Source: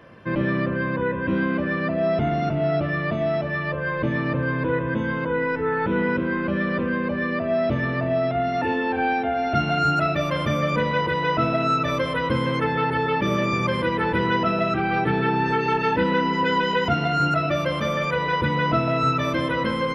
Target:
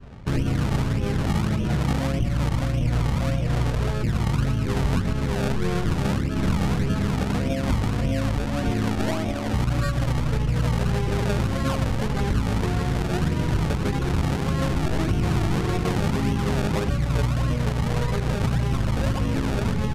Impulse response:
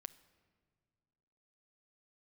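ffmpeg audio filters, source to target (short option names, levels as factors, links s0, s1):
-filter_complex "[0:a]aemphasis=mode=reproduction:type=riaa,bandreject=f=122.4:t=h:w=4,bandreject=f=244.8:t=h:w=4,bandreject=f=367.2:t=h:w=4,adynamicequalizer=threshold=0.02:dfrequency=760:dqfactor=1.2:tfrequency=760:tqfactor=1.2:attack=5:release=100:ratio=0.375:range=3:mode=cutabove:tftype=bell,asplit=2[s0][s1];[s1]adelay=110,lowpass=f=2000:p=1,volume=0.316,asplit=2[s2][s3];[s3]adelay=110,lowpass=f=2000:p=1,volume=0.29,asplit=2[s4][s5];[s5]adelay=110,lowpass=f=2000:p=1,volume=0.29[s6];[s2][s4][s6]amix=inputs=3:normalize=0[s7];[s0][s7]amix=inputs=2:normalize=0,asplit=3[s8][s9][s10];[s9]asetrate=22050,aresample=44100,atempo=2,volume=0.891[s11];[s10]asetrate=55563,aresample=44100,atempo=0.793701,volume=0.631[s12];[s8][s11][s12]amix=inputs=3:normalize=0,acrusher=samples=24:mix=1:aa=0.000001:lfo=1:lforange=24:lforate=1.7,asetrate=36028,aresample=44100,atempo=1.22405,adynamicsmooth=sensitivity=2:basefreq=4300,alimiter=limit=0.316:level=0:latency=1:release=157,aresample=32000,aresample=44100,volume=0.596"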